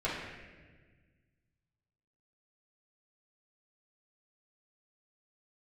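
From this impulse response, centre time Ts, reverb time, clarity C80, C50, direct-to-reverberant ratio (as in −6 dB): 81 ms, 1.4 s, 3.0 dB, 0.5 dB, −10.0 dB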